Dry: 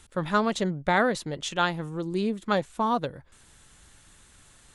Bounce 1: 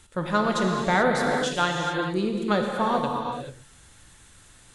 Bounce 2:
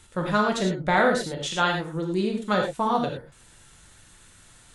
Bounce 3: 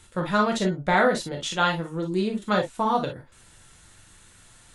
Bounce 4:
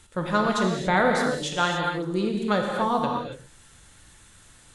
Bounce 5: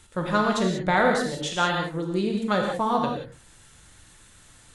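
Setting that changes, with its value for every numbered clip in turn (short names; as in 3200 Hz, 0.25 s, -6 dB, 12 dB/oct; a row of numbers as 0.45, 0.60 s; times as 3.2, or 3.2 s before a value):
non-linear reverb, gate: 460, 130, 80, 310, 210 ms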